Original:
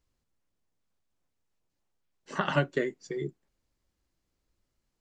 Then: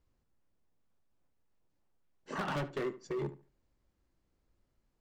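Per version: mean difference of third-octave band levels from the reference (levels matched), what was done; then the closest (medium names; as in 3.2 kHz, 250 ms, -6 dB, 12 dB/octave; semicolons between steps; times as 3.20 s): 7.0 dB: treble shelf 2.4 kHz -10.5 dB; in parallel at 0 dB: compression, threshold -35 dBFS, peak gain reduction 13.5 dB; on the sum: hard clipper -29 dBFS, distortion -5 dB; filtered feedback delay 73 ms, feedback 22%, low-pass 2.8 kHz, level -14 dB; trim -3 dB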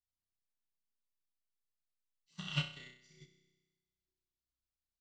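10.5 dB: graphic EQ 500/2000/4000 Hz -11/-5/+9 dB; on a send: flutter echo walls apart 5.5 m, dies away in 1.3 s; on the sum: time-frequency box 1.59–4.07 s, 200–1900 Hz -14 dB; upward expansion 2.5:1, over -42 dBFS; trim -2.5 dB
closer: first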